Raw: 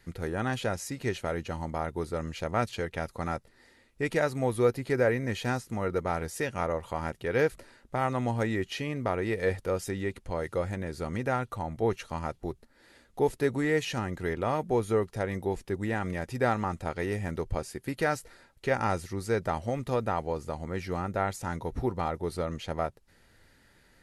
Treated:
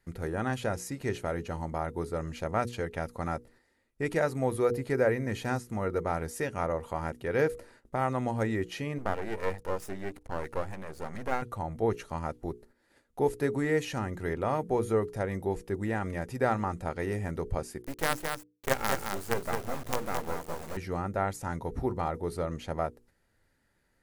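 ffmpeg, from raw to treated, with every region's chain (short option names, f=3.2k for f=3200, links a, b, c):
-filter_complex "[0:a]asettb=1/sr,asplit=3[a][b][c];[a]atrim=end=8.984[d];[b]atrim=start=8.98:end=11.42,asetpts=PTS-STARTPTS,afade=t=in:d=0.004:c=qsin,afade=t=out:st=2.436:d=0.004:c=qsin,equalizer=f=810:w=2.5:g=7,aeval=exprs='max(val(0),0)':c=same[e];[c]atrim=start=11.416[f];[d][e]acrossfade=d=0.004:c1=hsin:c2=qsin[g];[g][f]acrossfade=d=0.004:c1=qsin:c2=hsin,asettb=1/sr,asplit=3[h][i][j];[h]atrim=end=17.824[k];[i]atrim=start=17.82:end=20.77,asetpts=PTS-STARTPTS,afade=t=in:d=0.004:c=qsin,afade=t=out:st=2.946:d=0.004:c=qsin,acrusher=bits=4:dc=4:mix=0:aa=0.000001,aecho=1:1:217:0.562,atrim=end_sample=130095[l];[j]atrim=start=20.766[m];[k][l]acrossfade=d=0.004:c1=hsin:c2=qsin[n];[n][m]acrossfade=d=0.004:c1=qsin:c2=hsin,agate=range=-10dB:threshold=-56dB:ratio=16:detection=peak,equalizer=f=3.6k:t=o:w=1.6:g=-5.5,bandreject=f=60:t=h:w=6,bandreject=f=120:t=h:w=6,bandreject=f=180:t=h:w=6,bandreject=f=240:t=h:w=6,bandreject=f=300:t=h:w=6,bandreject=f=360:t=h:w=6,bandreject=f=420:t=h:w=6,bandreject=f=480:t=h:w=6"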